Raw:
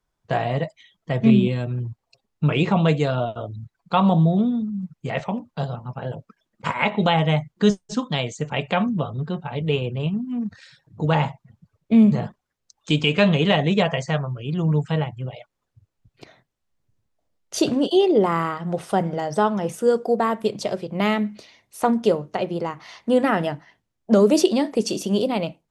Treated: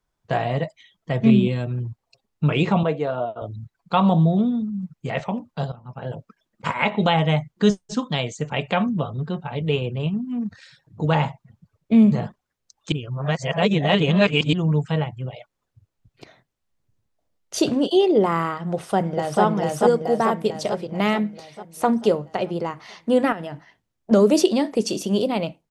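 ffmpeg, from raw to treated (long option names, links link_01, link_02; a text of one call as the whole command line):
ffmpeg -i in.wav -filter_complex "[0:a]asettb=1/sr,asplit=3[link_01][link_02][link_03];[link_01]atrim=end=2.834[link_04];[link_02]atrim=start=2.83:end=3.42,asetpts=PTS-STARTPTS,afade=type=in:duration=0.004:curve=qsin,afade=type=out:start_time=0.586:duration=0.004:curve=qsin,bandpass=frequency=670:width_type=q:width=0.69[link_05];[link_03]atrim=start=3.416[link_06];[link_04][link_05]acrossfade=duration=0.004:curve1=hsin:curve2=qsin[link_07];[link_07][link_06]acrossfade=duration=0.004:curve1=qsin:curve2=hsin,asplit=2[link_08][link_09];[link_09]afade=type=in:start_time=18.73:duration=0.01,afade=type=out:start_time=19.42:duration=0.01,aecho=0:1:440|880|1320|1760|2200|2640|3080|3520|3960:0.944061|0.566437|0.339862|0.203917|0.12235|0.0734102|0.0440461|0.0264277|0.0158566[link_10];[link_08][link_10]amix=inputs=2:normalize=0,asettb=1/sr,asplit=3[link_11][link_12][link_13];[link_11]atrim=end=23.324[link_14];[link_12]atrim=start=23.32:end=24.11,asetpts=PTS-STARTPTS,afade=type=in:duration=0.004:curve=qsin,afade=type=out:start_time=0.786:duration=0.004:curve=qsin,acompressor=threshold=-27dB:ratio=8:attack=3.2:release=140:knee=1:detection=peak[link_15];[link_13]atrim=start=24.106[link_16];[link_14][link_15]acrossfade=duration=0.004:curve1=hsin:curve2=qsin[link_17];[link_17][link_16]acrossfade=duration=0.004:curve1=qsin:curve2=hsin,asplit=4[link_18][link_19][link_20][link_21];[link_18]atrim=end=5.72,asetpts=PTS-STARTPTS,afade=type=out:start_time=5.716:duration=0.004:curve=hsin:silence=0.188365[link_22];[link_19]atrim=start=5.72:end=12.922,asetpts=PTS-STARTPTS,afade=type=in:duration=0.41:silence=0.188365[link_23];[link_20]atrim=start=12.918:end=14.532,asetpts=PTS-STARTPTS,areverse[link_24];[link_21]atrim=start=14.528[link_25];[link_22][link_23]concat=n=2:v=0:a=1[link_26];[link_26][link_24]acrossfade=duration=0.004:curve1=hsin:curve2=hsin[link_27];[link_27][link_25]acrossfade=duration=0.004:curve1=hsin:curve2=hsin" out.wav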